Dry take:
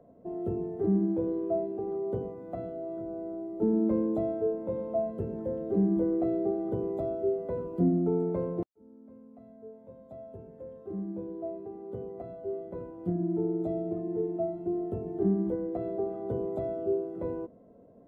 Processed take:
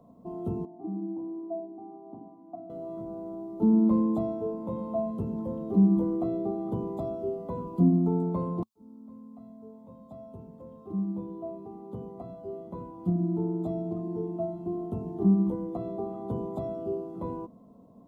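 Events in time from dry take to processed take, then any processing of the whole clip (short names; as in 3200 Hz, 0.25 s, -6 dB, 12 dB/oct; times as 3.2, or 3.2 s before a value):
0.65–2.7 double band-pass 470 Hz, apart 1.2 oct
whole clip: EQ curve 100 Hz 0 dB, 220 Hz +6 dB, 380 Hz -5 dB, 560 Hz -6 dB, 1100 Hz +10 dB, 1600 Hz -12 dB, 3600 Hz +6 dB; gain +1 dB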